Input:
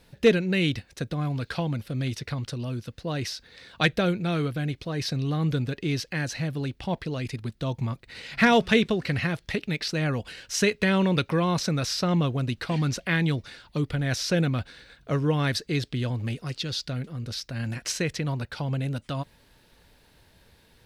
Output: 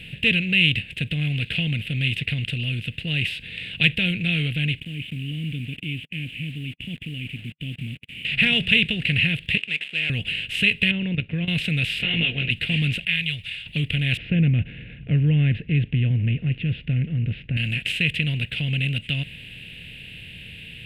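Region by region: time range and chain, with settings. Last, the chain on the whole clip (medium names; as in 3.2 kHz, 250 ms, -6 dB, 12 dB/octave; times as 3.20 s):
4.80–8.25 s: cascade formant filter i + word length cut 10-bit, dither none
9.57–10.10 s: dead-time distortion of 0.12 ms + high-pass 750 Hz + distance through air 100 m
10.91–11.48 s: low-pass 1.1 kHz + level held to a coarse grid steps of 12 dB
11.98–12.50 s: spectral peaks clipped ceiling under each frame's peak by 19 dB + low-pass 3.3 kHz 24 dB/octave + detune thickener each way 34 cents
13.05–13.66 s: expander -49 dBFS + amplifier tone stack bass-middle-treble 10-0-10
14.17–17.57 s: low-pass 2 kHz 24 dB/octave + tilt shelf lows +9 dB, about 680 Hz
whole clip: spectral levelling over time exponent 0.6; FFT filter 150 Hz 0 dB, 390 Hz -14 dB, 600 Hz -16 dB, 1.1 kHz -28 dB, 2.8 kHz +15 dB, 5.8 kHz -26 dB, 8.3 kHz -6 dB; trim -1 dB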